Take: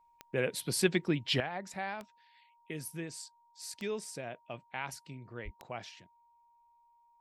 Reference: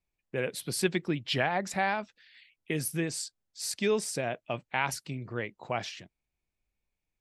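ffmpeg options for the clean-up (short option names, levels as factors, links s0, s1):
-filter_complex "[0:a]adeclick=t=4,bandreject=f=940:w=30,asplit=3[s0][s1][s2];[s0]afade=t=out:st=5.44:d=0.02[s3];[s1]highpass=f=140:w=0.5412,highpass=f=140:w=1.3066,afade=t=in:st=5.44:d=0.02,afade=t=out:st=5.56:d=0.02[s4];[s2]afade=t=in:st=5.56:d=0.02[s5];[s3][s4][s5]amix=inputs=3:normalize=0,asetnsamples=n=441:p=0,asendcmd='1.4 volume volume 9.5dB',volume=1"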